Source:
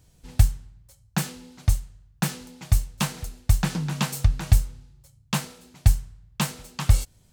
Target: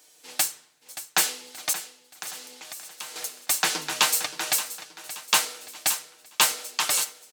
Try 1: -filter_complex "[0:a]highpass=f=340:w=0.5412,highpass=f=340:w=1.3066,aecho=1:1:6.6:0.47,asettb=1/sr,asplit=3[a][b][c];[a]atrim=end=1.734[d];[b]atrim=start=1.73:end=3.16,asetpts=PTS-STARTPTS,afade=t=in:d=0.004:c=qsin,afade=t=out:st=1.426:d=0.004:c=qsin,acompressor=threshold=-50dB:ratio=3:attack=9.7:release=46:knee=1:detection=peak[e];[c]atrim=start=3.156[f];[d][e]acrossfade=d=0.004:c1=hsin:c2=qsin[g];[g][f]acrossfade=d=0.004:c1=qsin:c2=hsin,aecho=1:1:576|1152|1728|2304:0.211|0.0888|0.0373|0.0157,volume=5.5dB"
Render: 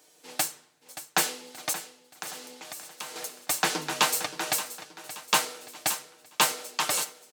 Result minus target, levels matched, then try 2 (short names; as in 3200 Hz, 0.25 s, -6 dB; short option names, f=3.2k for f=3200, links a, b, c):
1000 Hz band +4.5 dB
-filter_complex "[0:a]highpass=f=340:w=0.5412,highpass=f=340:w=1.3066,tiltshelf=f=1.2k:g=-4.5,aecho=1:1:6.6:0.47,asettb=1/sr,asplit=3[a][b][c];[a]atrim=end=1.734[d];[b]atrim=start=1.73:end=3.16,asetpts=PTS-STARTPTS,afade=t=in:d=0.004:c=qsin,afade=t=out:st=1.426:d=0.004:c=qsin,acompressor=threshold=-50dB:ratio=3:attack=9.7:release=46:knee=1:detection=peak[e];[c]atrim=start=3.156[f];[d][e]acrossfade=d=0.004:c1=hsin:c2=qsin[g];[g][f]acrossfade=d=0.004:c1=qsin:c2=hsin,aecho=1:1:576|1152|1728|2304:0.211|0.0888|0.0373|0.0157,volume=5.5dB"